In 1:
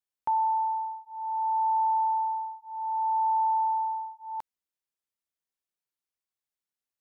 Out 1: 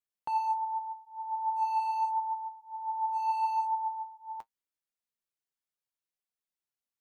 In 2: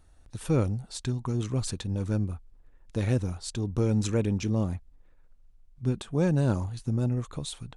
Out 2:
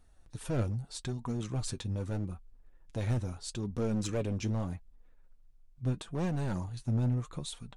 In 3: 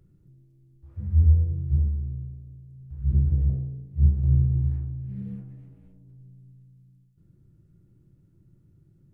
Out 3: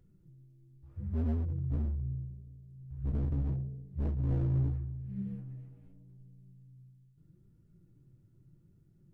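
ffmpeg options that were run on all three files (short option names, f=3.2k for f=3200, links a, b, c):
-af "volume=23dB,asoftclip=hard,volume=-23dB,flanger=delay=4:depth=4.9:regen=47:speed=0.79:shape=triangular"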